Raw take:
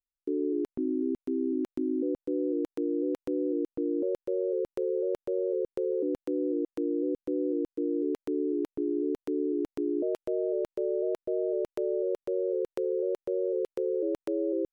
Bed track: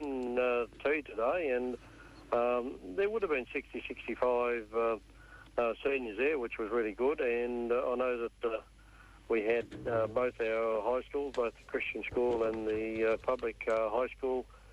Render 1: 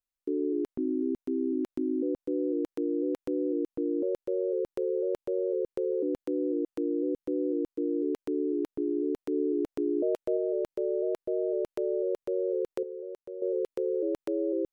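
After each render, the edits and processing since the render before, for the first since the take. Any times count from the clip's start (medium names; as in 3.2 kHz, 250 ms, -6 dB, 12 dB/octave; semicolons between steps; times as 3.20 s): 9.32–10.37 s: peaking EQ 540 Hz +3.5 dB; 12.83–13.42 s: gain -10 dB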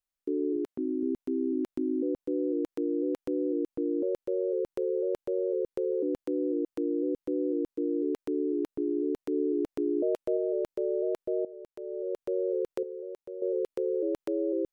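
0.56–1.03 s: high-pass 180 Hz 6 dB/octave; 11.45–12.27 s: fade in quadratic, from -16 dB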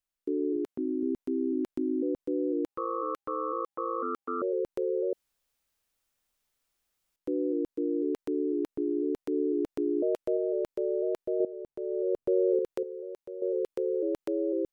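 2.66–4.42 s: ring modulator 810 Hz; 5.13–7.16 s: room tone; 11.40–12.59 s: tilt shelf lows +7.5 dB, about 920 Hz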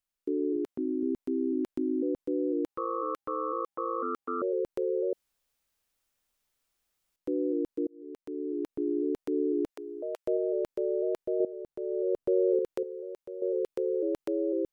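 7.87–8.88 s: fade in; 9.70–10.27 s: high-pass 690 Hz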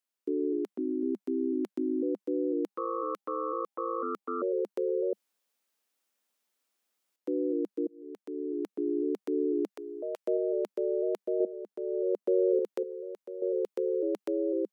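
elliptic high-pass 200 Hz; dynamic bell 1.6 kHz, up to -3 dB, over -50 dBFS, Q 3.2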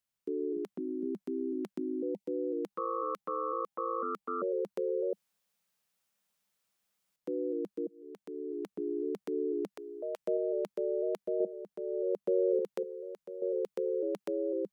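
1.88–2.27 s: spectral selection erased 930–1900 Hz; resonant low shelf 210 Hz +9 dB, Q 3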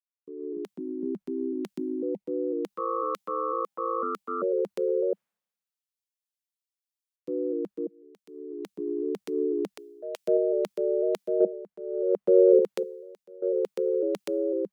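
level rider gain up to 6 dB; three bands expanded up and down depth 100%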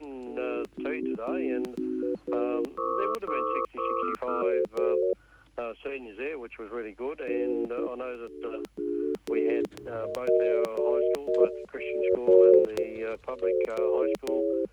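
add bed track -3.5 dB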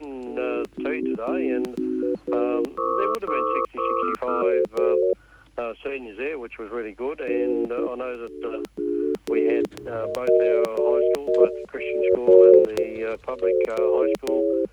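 trim +5.5 dB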